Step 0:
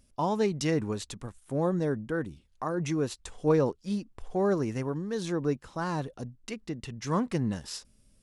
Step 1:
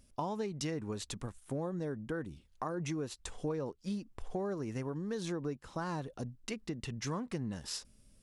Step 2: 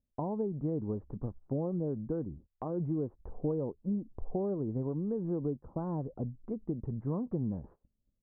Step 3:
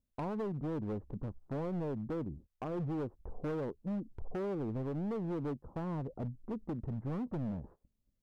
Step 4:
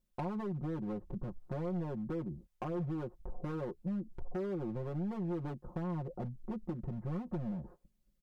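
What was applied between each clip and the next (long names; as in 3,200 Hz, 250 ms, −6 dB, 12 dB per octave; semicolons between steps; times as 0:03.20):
downward compressor 6 to 1, threshold −34 dBFS, peak gain reduction 14 dB
Bessel low-pass filter 570 Hz, order 6; noise gate −57 dBFS, range −24 dB; level +5 dB
hard clipping −33.5 dBFS, distortion −9 dB
comb filter 5.6 ms, depth 97%; downward compressor 2.5 to 1, threshold −38 dBFS, peak gain reduction 6 dB; level +1 dB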